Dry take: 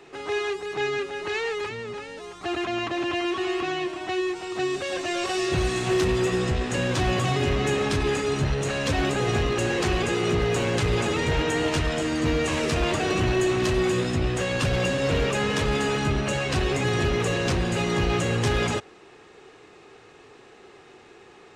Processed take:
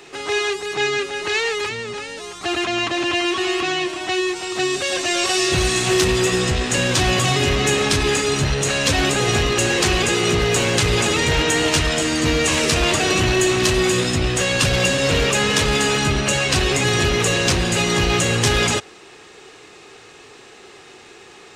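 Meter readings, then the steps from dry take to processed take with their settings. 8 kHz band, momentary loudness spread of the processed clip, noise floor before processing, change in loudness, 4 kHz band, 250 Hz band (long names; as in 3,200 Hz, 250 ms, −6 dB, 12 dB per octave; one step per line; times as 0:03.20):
+14.0 dB, 5 LU, −50 dBFS, +7.0 dB, +11.5 dB, +4.0 dB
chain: high-shelf EQ 2,600 Hz +11.5 dB
level +4 dB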